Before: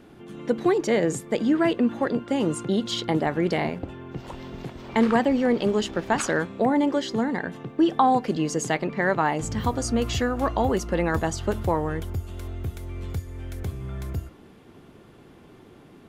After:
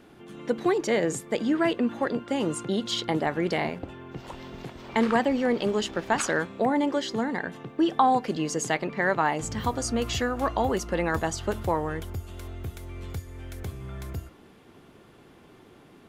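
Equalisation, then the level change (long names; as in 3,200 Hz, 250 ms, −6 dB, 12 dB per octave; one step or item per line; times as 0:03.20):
low-shelf EQ 460 Hz −5 dB
0.0 dB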